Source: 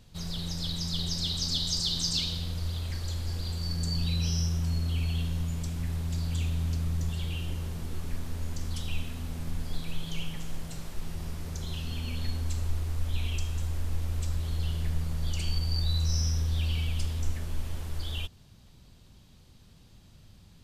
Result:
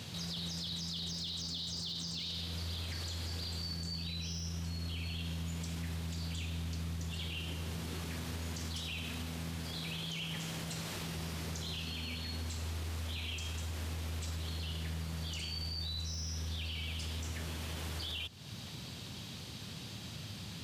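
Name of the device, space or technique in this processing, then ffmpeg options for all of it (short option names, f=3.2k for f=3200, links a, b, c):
broadcast voice chain: -af "highpass=f=91:w=0.5412,highpass=f=91:w=1.3066,deesser=0.9,acompressor=threshold=-51dB:ratio=4,equalizer=f=3.3k:t=o:w=2.2:g=6,alimiter=level_in=19dB:limit=-24dB:level=0:latency=1:release=16,volume=-19dB,volume=11.5dB"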